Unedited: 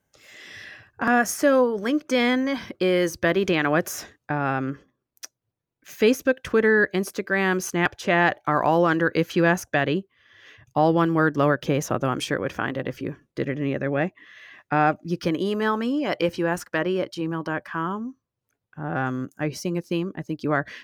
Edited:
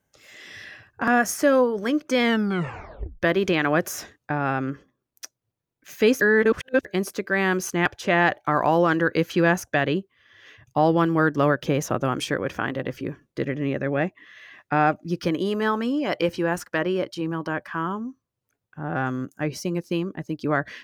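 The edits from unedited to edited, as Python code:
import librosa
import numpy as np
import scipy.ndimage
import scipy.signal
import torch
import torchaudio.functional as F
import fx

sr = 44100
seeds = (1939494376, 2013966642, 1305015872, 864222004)

y = fx.edit(x, sr, fx.tape_stop(start_s=2.23, length_s=0.99),
    fx.reverse_span(start_s=6.21, length_s=0.64), tone=tone)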